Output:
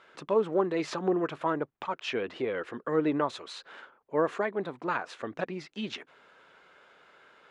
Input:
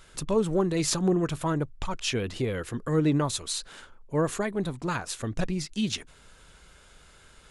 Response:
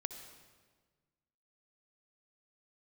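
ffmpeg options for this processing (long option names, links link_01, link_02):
-af "highpass=380,lowpass=2200,volume=2dB"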